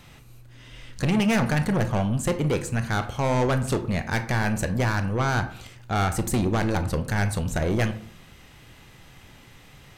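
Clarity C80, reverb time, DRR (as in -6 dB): 17.0 dB, 0.55 s, 9.0 dB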